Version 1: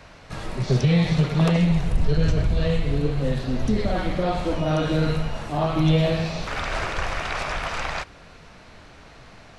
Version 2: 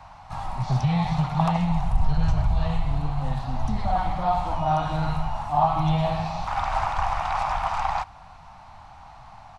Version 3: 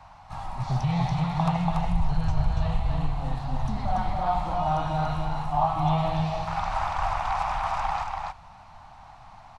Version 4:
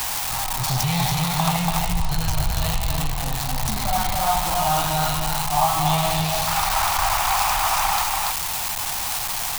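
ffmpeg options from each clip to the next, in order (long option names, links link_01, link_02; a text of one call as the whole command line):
ffmpeg -i in.wav -af "firequalizer=gain_entry='entry(100,0);entry(430,-23);entry(790,12);entry(1600,-7)':delay=0.05:min_phase=1" out.wav
ffmpeg -i in.wav -af "aecho=1:1:285:0.668,volume=-3.5dB" out.wav
ffmpeg -i in.wav -af "aeval=exprs='val(0)+0.5*0.0266*sgn(val(0))':channel_layout=same,crystalizer=i=8:c=0" out.wav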